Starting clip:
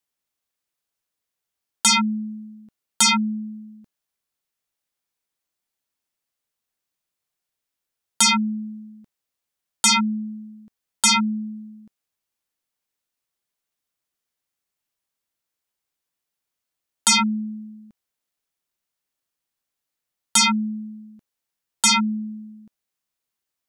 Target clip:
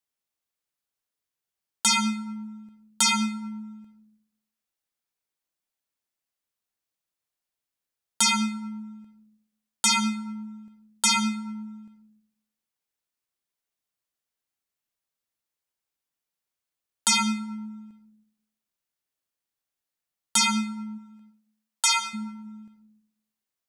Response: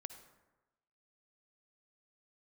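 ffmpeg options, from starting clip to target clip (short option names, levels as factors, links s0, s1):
-filter_complex "[0:a]asplit=3[s0][s1][s2];[s0]afade=t=out:st=20.97:d=0.02[s3];[s1]highpass=f=520:w=0.5412,highpass=f=520:w=1.3066,afade=t=in:st=20.97:d=0.02,afade=t=out:st=22.13:d=0.02[s4];[s2]afade=t=in:st=22.13:d=0.02[s5];[s3][s4][s5]amix=inputs=3:normalize=0[s6];[1:a]atrim=start_sample=2205[s7];[s6][s7]afir=irnorm=-1:irlink=0"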